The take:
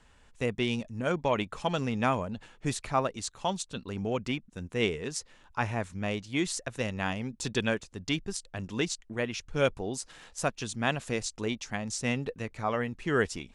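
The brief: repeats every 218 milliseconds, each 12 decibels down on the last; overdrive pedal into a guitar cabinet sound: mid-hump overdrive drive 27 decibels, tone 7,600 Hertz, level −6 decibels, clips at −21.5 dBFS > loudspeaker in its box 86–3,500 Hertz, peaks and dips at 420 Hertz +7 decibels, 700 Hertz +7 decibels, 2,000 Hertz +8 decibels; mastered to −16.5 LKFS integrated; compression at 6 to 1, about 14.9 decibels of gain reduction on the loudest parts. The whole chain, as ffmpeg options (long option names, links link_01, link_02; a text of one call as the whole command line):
ffmpeg -i in.wav -filter_complex "[0:a]acompressor=threshold=-38dB:ratio=6,aecho=1:1:218|436|654:0.251|0.0628|0.0157,asplit=2[link_01][link_02];[link_02]highpass=frequency=720:poles=1,volume=27dB,asoftclip=type=tanh:threshold=-21.5dB[link_03];[link_01][link_03]amix=inputs=2:normalize=0,lowpass=frequency=7600:poles=1,volume=-6dB,highpass=86,equalizer=frequency=420:width_type=q:width=4:gain=7,equalizer=frequency=700:width_type=q:width=4:gain=7,equalizer=frequency=2000:width_type=q:width=4:gain=8,lowpass=frequency=3500:width=0.5412,lowpass=frequency=3500:width=1.3066,volume=13dB" out.wav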